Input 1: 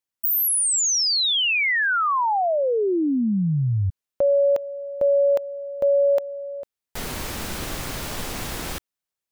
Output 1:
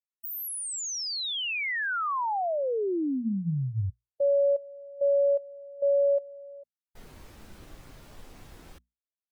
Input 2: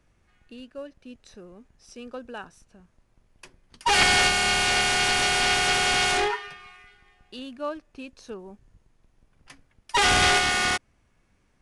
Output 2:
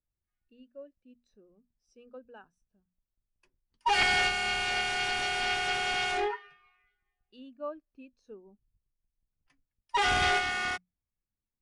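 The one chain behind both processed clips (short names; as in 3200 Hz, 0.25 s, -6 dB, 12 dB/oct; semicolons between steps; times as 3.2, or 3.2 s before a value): notches 60/120/180/240 Hz; spectral expander 1.5:1; gain -5 dB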